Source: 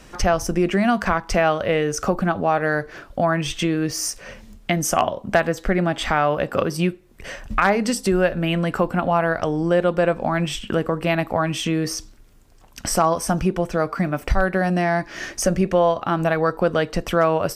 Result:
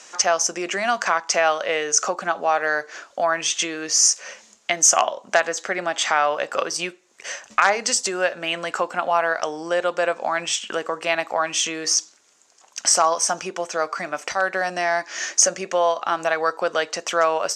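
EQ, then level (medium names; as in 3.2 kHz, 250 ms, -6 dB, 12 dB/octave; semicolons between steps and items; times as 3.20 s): high-pass 630 Hz 12 dB/octave; resonant low-pass 6.8 kHz, resonance Q 4.2; +1.5 dB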